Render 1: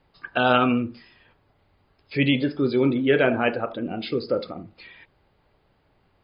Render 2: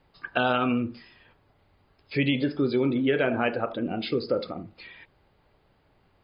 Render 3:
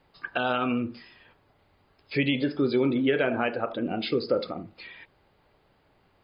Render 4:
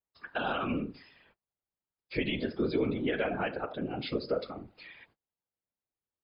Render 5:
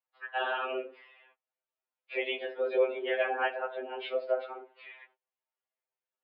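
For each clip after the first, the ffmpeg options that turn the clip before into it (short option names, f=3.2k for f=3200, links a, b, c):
-af "acompressor=threshold=-20dB:ratio=6"
-af "lowshelf=f=150:g=-5.5,alimiter=limit=-14.5dB:level=0:latency=1:release=417,volume=1.5dB"
-af "agate=range=-30dB:threshold=-56dB:ratio=16:detection=peak,afftfilt=real='hypot(re,im)*cos(2*PI*random(0))':imag='hypot(re,im)*sin(2*PI*random(1))':win_size=512:overlap=0.75"
-af "highpass=f=330:t=q:w=0.5412,highpass=f=330:t=q:w=1.307,lowpass=f=3.1k:t=q:w=0.5176,lowpass=f=3.1k:t=q:w=0.7071,lowpass=f=3.1k:t=q:w=1.932,afreqshift=79,afftfilt=real='re*2.45*eq(mod(b,6),0)':imag='im*2.45*eq(mod(b,6),0)':win_size=2048:overlap=0.75,volume=4.5dB"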